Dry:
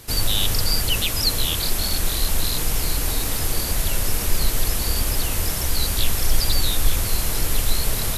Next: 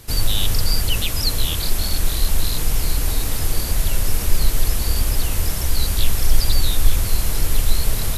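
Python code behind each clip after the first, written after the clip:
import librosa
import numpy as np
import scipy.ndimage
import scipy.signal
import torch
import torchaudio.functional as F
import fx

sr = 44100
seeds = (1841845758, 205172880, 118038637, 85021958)

y = fx.low_shelf(x, sr, hz=130.0, db=6.5)
y = y * 10.0 ** (-1.5 / 20.0)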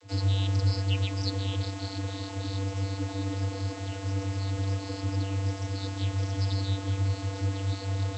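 y = fx.vocoder(x, sr, bands=32, carrier='square', carrier_hz=97.4)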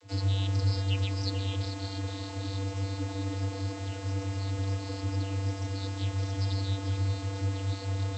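y = x + 10.0 ** (-10.0 / 20.0) * np.pad(x, (int(439 * sr / 1000.0), 0))[:len(x)]
y = y * 10.0 ** (-2.0 / 20.0)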